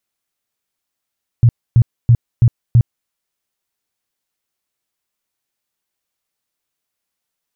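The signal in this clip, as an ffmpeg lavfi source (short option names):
-f lavfi -i "aevalsrc='0.562*sin(2*PI*118*mod(t,0.33))*lt(mod(t,0.33),7/118)':d=1.65:s=44100"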